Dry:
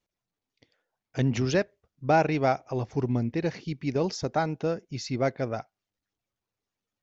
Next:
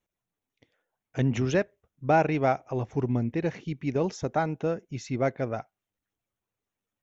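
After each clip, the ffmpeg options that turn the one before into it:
-af "equalizer=f=4.7k:w=3.3:g=-13.5"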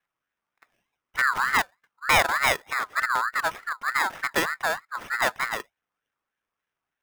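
-af "acrusher=samples=15:mix=1:aa=0.000001,aeval=exprs='val(0)*sin(2*PI*1400*n/s+1400*0.2/3.3*sin(2*PI*3.3*n/s))':c=same,volume=4.5dB"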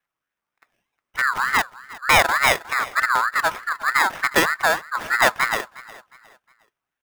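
-af "dynaudnorm=f=350:g=9:m=11.5dB,aecho=1:1:360|720|1080:0.106|0.036|0.0122"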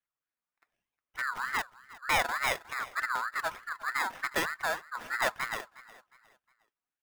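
-af "flanger=delay=0.3:depth=3.9:regen=67:speed=1.1:shape=sinusoidal,volume=-8dB"

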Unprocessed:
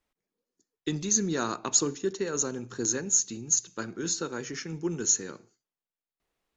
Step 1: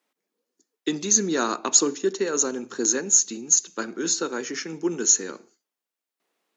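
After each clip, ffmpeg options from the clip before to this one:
-af "highpass=f=220:w=0.5412,highpass=f=220:w=1.3066,volume=6dB"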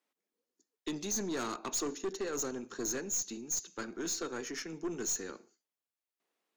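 -af "aeval=exprs='(tanh(14.1*val(0)+0.25)-tanh(0.25))/14.1':c=same,volume=-7.5dB"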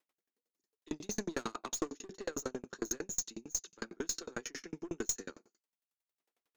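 -af "aeval=exprs='val(0)*pow(10,-39*if(lt(mod(11*n/s,1),2*abs(11)/1000),1-mod(11*n/s,1)/(2*abs(11)/1000),(mod(11*n/s,1)-2*abs(11)/1000)/(1-2*abs(11)/1000))/20)':c=same,volume=6.5dB"

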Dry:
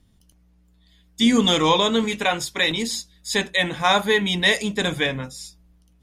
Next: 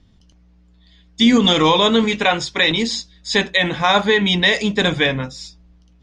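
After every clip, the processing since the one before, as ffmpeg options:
-af "lowpass=f=6k:w=0.5412,lowpass=f=6k:w=1.3066,alimiter=limit=-10.5dB:level=0:latency=1:release=66,volume=6dB"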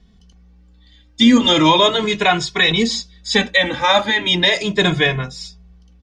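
-filter_complex "[0:a]asplit=2[a][b];[b]adelay=2.3,afreqshift=0.37[c];[a][c]amix=inputs=2:normalize=1,volume=4.5dB"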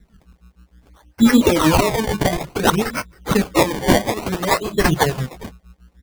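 -filter_complex "[0:a]acrossover=split=520[a][b];[a]aeval=exprs='val(0)*(1-1/2+1/2*cos(2*PI*6.5*n/s))':c=same[c];[b]aeval=exprs='val(0)*(1-1/2-1/2*cos(2*PI*6.5*n/s))':c=same[d];[c][d]amix=inputs=2:normalize=0,acrusher=samples=23:mix=1:aa=0.000001:lfo=1:lforange=23:lforate=0.58,volume=4dB"

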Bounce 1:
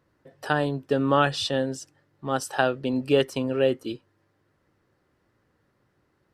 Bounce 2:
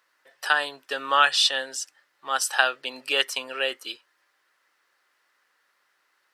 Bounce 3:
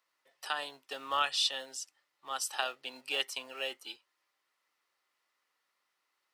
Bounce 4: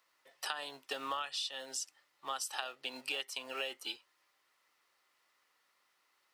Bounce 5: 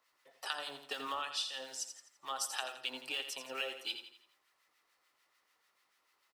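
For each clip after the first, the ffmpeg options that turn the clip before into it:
-af "highpass=1.4k,volume=9dB"
-filter_complex "[0:a]equalizer=f=1.6k:w=4.7:g=-11.5,acrossover=split=440|1600|4700[a][b][c][d];[a]acrusher=samples=37:mix=1:aa=0.000001[e];[e][b][c][d]amix=inputs=4:normalize=0,volume=-9dB"
-af "acompressor=threshold=-40dB:ratio=20,volume=5.5dB"
-filter_complex "[0:a]acrossover=split=1200[a][b];[a]aeval=exprs='val(0)*(1-0.7/2+0.7/2*cos(2*PI*6.8*n/s))':c=same[c];[b]aeval=exprs='val(0)*(1-0.7/2-0.7/2*cos(2*PI*6.8*n/s))':c=same[d];[c][d]amix=inputs=2:normalize=0,aecho=1:1:84|168|252|336|420:0.355|0.153|0.0656|0.0282|0.0121,volume=2.5dB"

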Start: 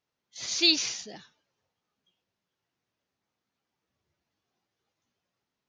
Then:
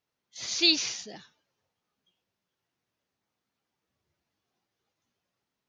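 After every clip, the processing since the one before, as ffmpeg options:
-filter_complex "[0:a]acrossover=split=8000[a][b];[b]acompressor=threshold=-51dB:ratio=4:attack=1:release=60[c];[a][c]amix=inputs=2:normalize=0"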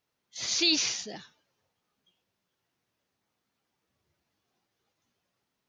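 -af "alimiter=limit=-17dB:level=0:latency=1:release=28,volume=3dB"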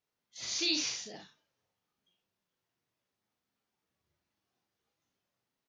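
-af "aecho=1:1:40|66:0.596|0.355,volume=-7.5dB"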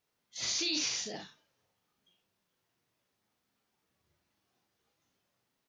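-af "alimiter=level_in=4.5dB:limit=-24dB:level=0:latency=1:release=102,volume=-4.5dB,volume=5.5dB"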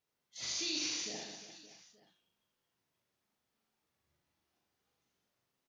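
-af "aecho=1:1:80|192|348.8|568.3|875.6:0.631|0.398|0.251|0.158|0.1,volume=-6dB"

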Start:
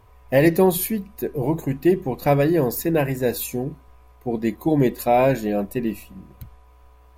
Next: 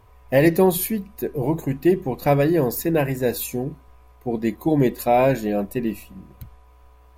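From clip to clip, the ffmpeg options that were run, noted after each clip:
-af anull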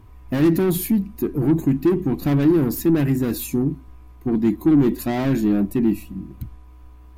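-af "asoftclip=type=tanh:threshold=-22dB,lowshelf=f=390:t=q:w=3:g=7"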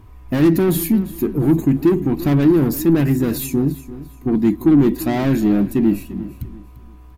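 -af "aecho=1:1:344|688|1032:0.158|0.0507|0.0162,volume=3dB"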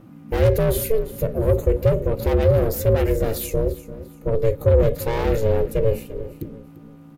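-af "aeval=exprs='val(0)*sin(2*PI*220*n/s)':c=same"

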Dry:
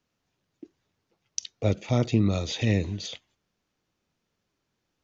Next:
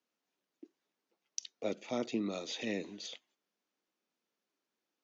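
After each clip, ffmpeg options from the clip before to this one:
-af "highpass=f=230:w=0.5412,highpass=f=230:w=1.3066,volume=-8dB"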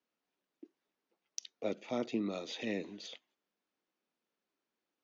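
-af "adynamicsmooth=sensitivity=1.5:basefreq=5.9k"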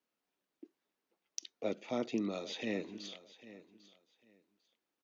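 -af "aecho=1:1:798|1596:0.141|0.0283"

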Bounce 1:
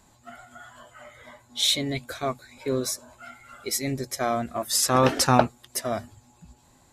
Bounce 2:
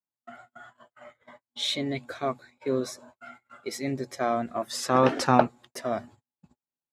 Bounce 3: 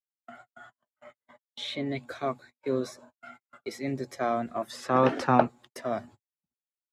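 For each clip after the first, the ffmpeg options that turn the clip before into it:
-af "agate=range=-42dB:threshold=-46dB:ratio=16:detection=peak,highpass=150,aemphasis=mode=reproduction:type=75fm,volume=-1dB"
-filter_complex "[0:a]agate=range=-32dB:threshold=-48dB:ratio=16:detection=peak,acrossover=split=180|840|3100[a][b][c][d];[d]acompressor=threshold=-44dB:ratio=6[e];[a][b][c][e]amix=inputs=4:normalize=0,volume=-1.5dB"

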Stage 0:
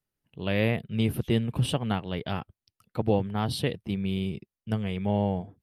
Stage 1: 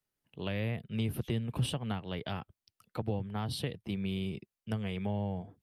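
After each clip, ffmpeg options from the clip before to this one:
-filter_complex "[0:a]lowshelf=f=260:g=-6,acrossover=split=170[a][b];[b]acompressor=threshold=-35dB:ratio=6[c];[a][c]amix=inputs=2:normalize=0"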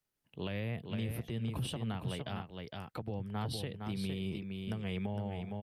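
-af "aecho=1:1:460:0.447,alimiter=level_in=4dB:limit=-24dB:level=0:latency=1:release=203,volume=-4dB"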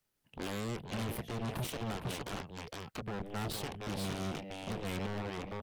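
-af "aeval=exprs='0.0422*(cos(1*acos(clip(val(0)/0.0422,-1,1)))-cos(1*PI/2))+0.015*(cos(7*acos(clip(val(0)/0.0422,-1,1)))-cos(7*PI/2))':c=same,asoftclip=type=hard:threshold=-33dB,volume=1dB"

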